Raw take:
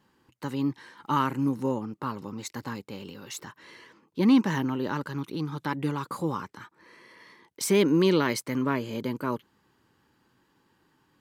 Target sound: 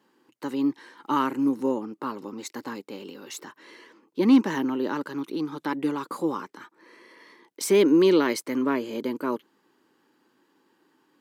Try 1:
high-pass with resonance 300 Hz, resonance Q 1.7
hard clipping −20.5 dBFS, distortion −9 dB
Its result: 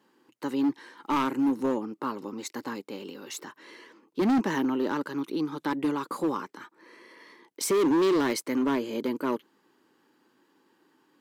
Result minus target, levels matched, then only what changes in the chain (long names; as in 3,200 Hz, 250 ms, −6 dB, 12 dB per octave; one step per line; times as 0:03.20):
hard clipping: distortion +31 dB
change: hard clipping −10 dBFS, distortion −40 dB